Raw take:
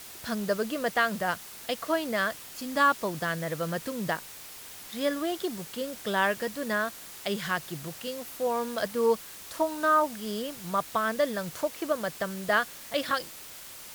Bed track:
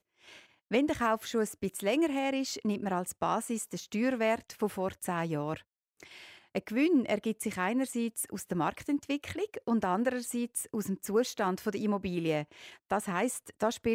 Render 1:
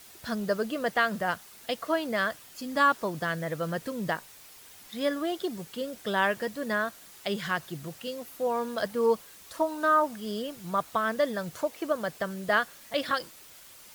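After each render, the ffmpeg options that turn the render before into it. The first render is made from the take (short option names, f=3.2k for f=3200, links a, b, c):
-af "afftdn=nr=7:nf=-45"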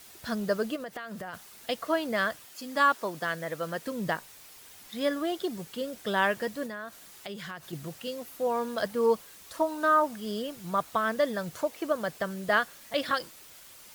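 -filter_complex "[0:a]asplit=3[a][b][c];[a]afade=t=out:st=0.75:d=0.02[d];[b]acompressor=threshold=-35dB:ratio=8:attack=3.2:release=140:knee=1:detection=peak,afade=t=in:st=0.75:d=0.02,afade=t=out:st=1.33:d=0.02[e];[c]afade=t=in:st=1.33:d=0.02[f];[d][e][f]amix=inputs=3:normalize=0,asettb=1/sr,asplit=3[g][h][i];[g]atrim=end=2.454[j];[h]atrim=start=2.45:end=3.87,asetpts=PTS-STARTPTS,afade=t=in:d=0.004:c=qsin,afade=t=out:st=1.416:d=0.004:c=qsin,highpass=f=330:p=1[k];[i]atrim=start=3.866[l];[j][k]acrossfade=d=0.004:c1=hsin:c2=qsin[m];[m][l]acrossfade=d=0.004:c1=qsin:c2=hsin,asettb=1/sr,asplit=3[n][o][p];[n]atrim=end=6.664[q];[o]atrim=start=6.66:end=7.73,asetpts=PTS-STARTPTS,afade=t=in:d=0.004:c=qsin,afade=t=out:st=1.066:d=0.004:c=qsin,acompressor=threshold=-37dB:ratio=4:attack=3.2:release=140:knee=1:detection=peak[r];[p]atrim=start=7.726[s];[q][r]acrossfade=d=0.004:c1=hsin:c2=qsin[t];[t][s]acrossfade=d=0.004:c1=qsin:c2=hsin"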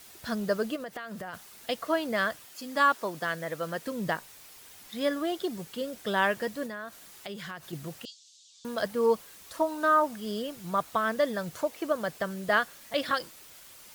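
-filter_complex "[0:a]asettb=1/sr,asplit=3[a][b][c];[a]atrim=end=8.054[d];[b]atrim=start=8.05:end=8.65,asetpts=PTS-STARTPTS,afade=t=in:d=0.004:c=qsin,afade=t=out:st=0.596:d=0.004:c=qsin,asuperpass=centerf=5100:order=8:qfactor=1.2[e];[c]atrim=start=8.646[f];[d][e]acrossfade=d=0.004:c1=hsin:c2=qsin[g];[g][f]acrossfade=d=0.004:c1=qsin:c2=hsin"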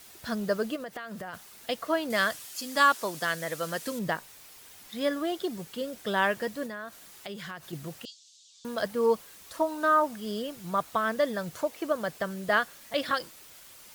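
-filter_complex "[0:a]asettb=1/sr,asplit=3[a][b][c];[a]atrim=end=2.104[d];[b]atrim=start=2.1:end=3.99,asetpts=PTS-STARTPTS,afade=t=in:d=0.004:c=qsin,afade=t=out:st=1.886:d=0.004:c=qsin,equalizer=f=8.5k:w=0.31:g=9[e];[c]atrim=start=3.986[f];[d][e]acrossfade=d=0.004:c1=hsin:c2=qsin[g];[g][f]acrossfade=d=0.004:c1=qsin:c2=hsin"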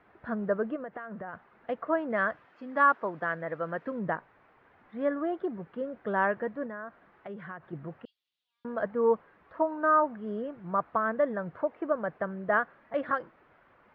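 -af "lowpass=f=1.7k:w=0.5412,lowpass=f=1.7k:w=1.3066,lowshelf=f=79:g=-8"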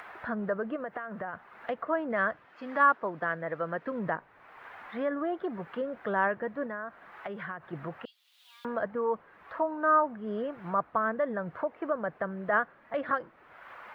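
-filter_complex "[0:a]acrossover=split=640[a][b];[a]alimiter=level_in=4.5dB:limit=-24dB:level=0:latency=1,volume=-4.5dB[c];[b]acompressor=mode=upward:threshold=-32dB:ratio=2.5[d];[c][d]amix=inputs=2:normalize=0"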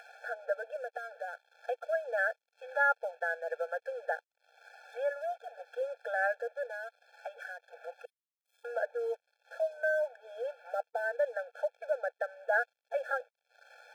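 -af "aeval=exprs='sgn(val(0))*max(abs(val(0))-0.00266,0)':c=same,afftfilt=real='re*eq(mod(floor(b*sr/1024/450),2),1)':imag='im*eq(mod(floor(b*sr/1024/450),2),1)':win_size=1024:overlap=0.75"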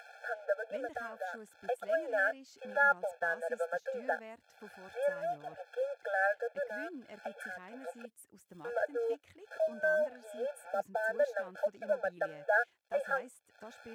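-filter_complex "[1:a]volume=-21dB[a];[0:a][a]amix=inputs=2:normalize=0"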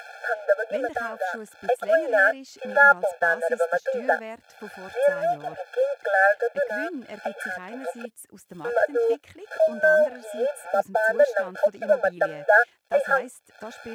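-af "volume=12dB"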